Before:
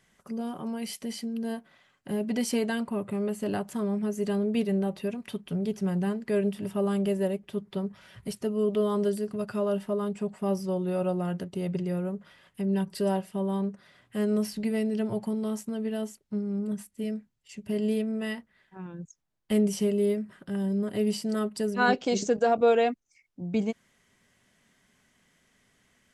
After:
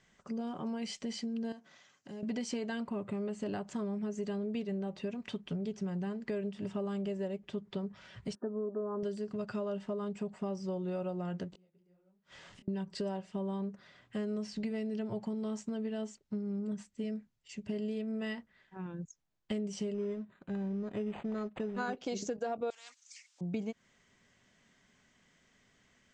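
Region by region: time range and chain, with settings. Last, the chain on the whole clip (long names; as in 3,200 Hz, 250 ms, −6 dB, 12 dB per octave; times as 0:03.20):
0:01.52–0:02.23: high-pass filter 120 Hz + parametric band 6,200 Hz +13.5 dB 0.76 octaves + downward compressor 2 to 1, threshold −51 dBFS
0:08.35–0:09.03: linear-phase brick-wall band-pass 200–1,800 Hz + high-frequency loss of the air 390 metres
0:11.52–0:12.68: converter with a step at zero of −45 dBFS + gate with flip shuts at −36 dBFS, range −33 dB + micro pitch shift up and down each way 51 cents
0:19.94–0:21.97: mu-law and A-law mismatch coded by A + linearly interpolated sample-rate reduction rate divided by 8×
0:22.70–0:23.41: high-pass filter 780 Hz 24 dB per octave + first difference + every bin compressed towards the loudest bin 4 to 1
whole clip: Butterworth low-pass 7,700 Hz 48 dB per octave; downward compressor 6 to 1, threshold −32 dBFS; level −1.5 dB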